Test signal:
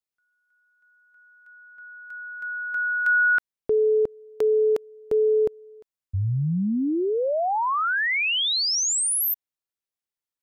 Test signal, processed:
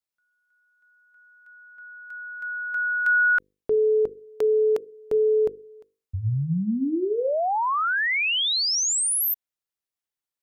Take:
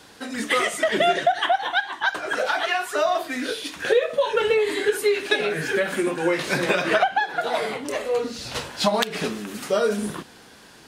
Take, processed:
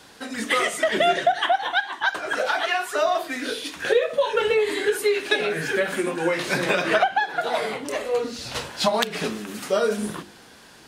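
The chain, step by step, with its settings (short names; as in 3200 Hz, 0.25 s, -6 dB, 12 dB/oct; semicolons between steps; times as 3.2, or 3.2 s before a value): notches 50/100/150/200/250/300/350/400/450/500 Hz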